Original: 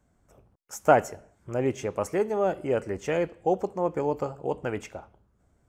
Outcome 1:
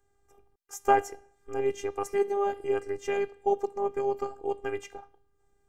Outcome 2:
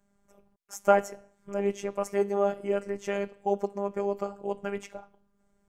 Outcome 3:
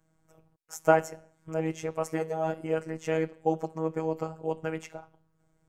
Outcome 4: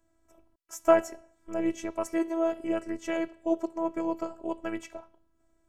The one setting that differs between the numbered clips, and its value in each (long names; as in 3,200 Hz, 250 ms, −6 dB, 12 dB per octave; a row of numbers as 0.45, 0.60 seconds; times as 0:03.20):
phases set to zero, frequency: 400, 200, 160, 330 Hertz